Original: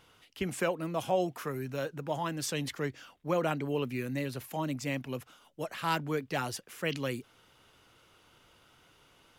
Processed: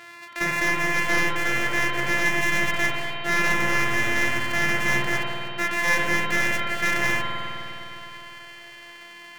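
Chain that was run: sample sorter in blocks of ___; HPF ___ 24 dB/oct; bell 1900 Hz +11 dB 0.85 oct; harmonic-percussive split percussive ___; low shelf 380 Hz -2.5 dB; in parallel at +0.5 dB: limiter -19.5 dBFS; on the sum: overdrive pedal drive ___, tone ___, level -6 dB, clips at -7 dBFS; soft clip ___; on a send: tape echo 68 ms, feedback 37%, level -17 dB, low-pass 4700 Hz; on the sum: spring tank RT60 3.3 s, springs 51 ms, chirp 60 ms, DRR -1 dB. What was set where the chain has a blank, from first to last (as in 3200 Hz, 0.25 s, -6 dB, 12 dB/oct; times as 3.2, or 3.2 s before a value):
128 samples, 88 Hz, -5 dB, 17 dB, 5600 Hz, -15 dBFS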